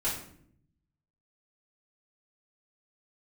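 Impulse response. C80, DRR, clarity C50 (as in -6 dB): 9.0 dB, -10.5 dB, 5.0 dB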